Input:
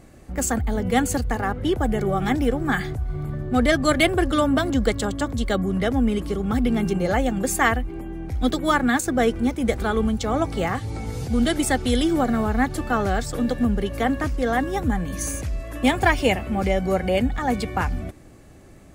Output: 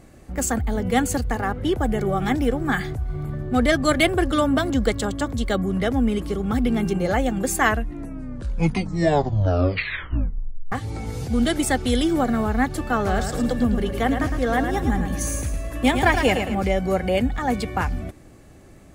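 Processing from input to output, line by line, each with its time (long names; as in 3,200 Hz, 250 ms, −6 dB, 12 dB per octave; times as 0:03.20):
0:07.55: tape stop 3.17 s
0:12.96–0:16.55: repeating echo 109 ms, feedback 39%, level −7 dB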